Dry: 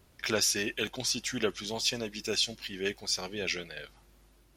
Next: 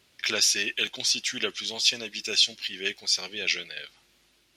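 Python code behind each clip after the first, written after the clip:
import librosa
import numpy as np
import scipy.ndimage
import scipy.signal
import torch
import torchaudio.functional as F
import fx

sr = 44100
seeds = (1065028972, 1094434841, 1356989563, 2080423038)

y = fx.weighting(x, sr, curve='D')
y = y * librosa.db_to_amplitude(-3.0)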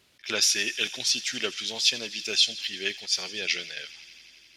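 y = fx.echo_wet_highpass(x, sr, ms=86, feedback_pct=84, hz=2100.0, wet_db=-17)
y = fx.attack_slew(y, sr, db_per_s=270.0)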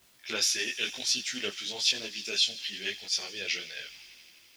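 y = fx.quant_dither(x, sr, seeds[0], bits=10, dither='triangular')
y = fx.detune_double(y, sr, cents=35)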